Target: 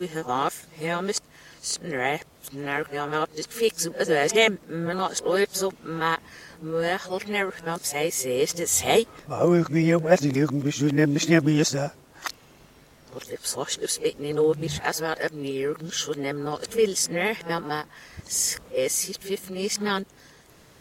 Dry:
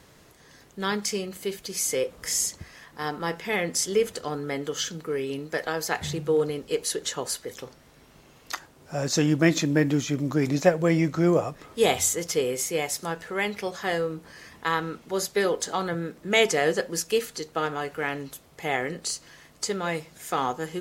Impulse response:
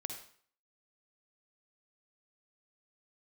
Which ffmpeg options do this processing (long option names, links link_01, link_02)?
-af "areverse,volume=1.5dB"